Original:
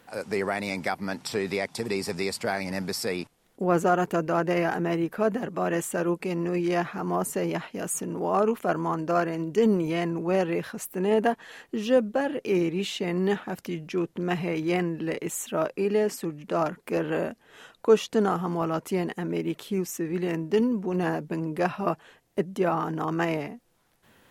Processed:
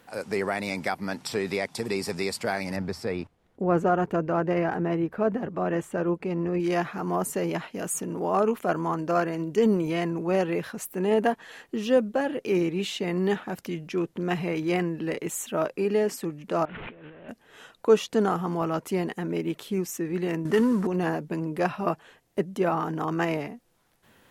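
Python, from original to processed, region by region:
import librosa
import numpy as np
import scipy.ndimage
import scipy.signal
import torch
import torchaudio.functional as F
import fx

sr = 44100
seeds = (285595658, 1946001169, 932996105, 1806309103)

y = fx.chain(x, sr, fx.lowpass(hz=1600.0, slope=6),
    fx.peak_eq(hz=81.0, db=10.5, octaves=0.75), at=(2.76, 6.6))
y = fx.chain(y, sr, fx.delta_mod(bps=16000, step_db=-36.5),
    fx.peak_eq(hz=410.0, db=-6.5, octaves=2.8),
    fx.over_compress(threshold_db=-44.0, ratio=-1.0), at=(16.65, 17.29))
y = fx.chain(y, sr, fx.cvsd(bps=64000),
    fx.band_shelf(hz=1400.0, db=9.0, octaves=1.1),
    fx.env_flatten(amount_pct=50), at=(20.45, 20.87))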